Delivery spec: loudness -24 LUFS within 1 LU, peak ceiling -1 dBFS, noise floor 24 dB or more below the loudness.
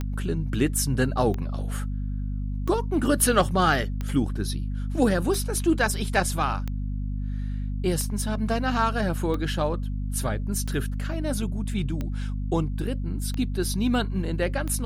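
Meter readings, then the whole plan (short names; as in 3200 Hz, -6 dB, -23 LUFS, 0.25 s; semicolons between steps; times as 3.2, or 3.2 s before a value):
clicks 12; hum 50 Hz; harmonics up to 250 Hz; hum level -26 dBFS; loudness -26.5 LUFS; peak -7.5 dBFS; loudness target -24.0 LUFS
-> de-click; de-hum 50 Hz, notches 5; gain +2.5 dB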